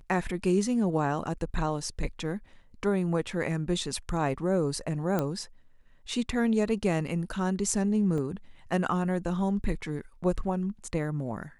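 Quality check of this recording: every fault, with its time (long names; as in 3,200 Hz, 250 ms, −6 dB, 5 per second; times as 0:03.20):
0:05.19: click −15 dBFS
0:08.18: drop-out 2.4 ms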